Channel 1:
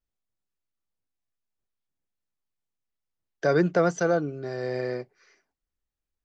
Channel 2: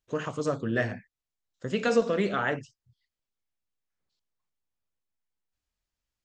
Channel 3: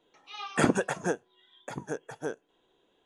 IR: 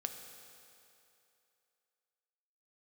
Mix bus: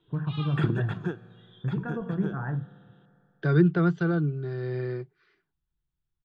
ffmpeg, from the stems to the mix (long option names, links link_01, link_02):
-filter_complex "[0:a]volume=1.5dB[link_01];[1:a]lowpass=frequency=1300:width=0.5412,lowpass=frequency=1300:width=1.3066,aecho=1:1:1.2:0.52,volume=-2dB,asplit=2[link_02][link_03];[link_03]volume=-7.5dB[link_04];[2:a]acompressor=threshold=-33dB:ratio=2,volume=2dB,asplit=2[link_05][link_06];[link_06]volume=-9.5dB[link_07];[3:a]atrim=start_sample=2205[link_08];[link_04][link_07]amix=inputs=2:normalize=0[link_09];[link_09][link_08]afir=irnorm=-1:irlink=0[link_10];[link_01][link_02][link_05][link_10]amix=inputs=4:normalize=0,firequalizer=gain_entry='entry(100,0);entry(150,10);entry(230,-9);entry(350,1);entry(540,-17);entry(790,-11);entry(1400,-3);entry(2100,-10);entry(3500,-1);entry(6000,-28)':delay=0.05:min_phase=1"